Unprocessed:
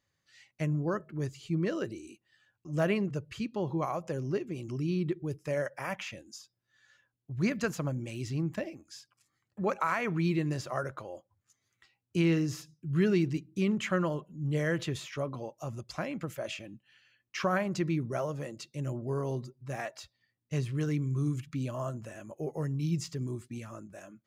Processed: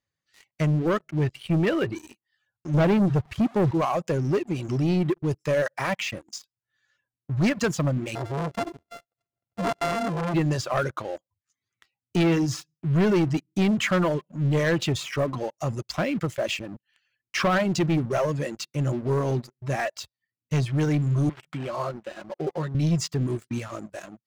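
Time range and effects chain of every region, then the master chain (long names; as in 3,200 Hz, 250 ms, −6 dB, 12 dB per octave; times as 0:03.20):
0:01.07–0:01.95: low-pass with resonance 2,700 Hz, resonance Q 1.6 + low-shelf EQ 61 Hz +7 dB
0:02.74–0:03.71: linear delta modulator 64 kbit/s, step −43 dBFS + high-pass filter 150 Hz 6 dB per octave + spectral tilt −3.5 dB per octave
0:08.15–0:10.34: samples sorted by size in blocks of 64 samples + high-shelf EQ 2,100 Hz −7.5 dB + saturating transformer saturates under 1,500 Hz
0:21.29–0:22.75: high-pass filter 420 Hz 6 dB per octave + comb filter 5.5 ms, depth 56% + linearly interpolated sample-rate reduction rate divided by 8×
whole clip: reverb reduction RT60 0.56 s; low-pass filter 8,400 Hz; leveller curve on the samples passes 3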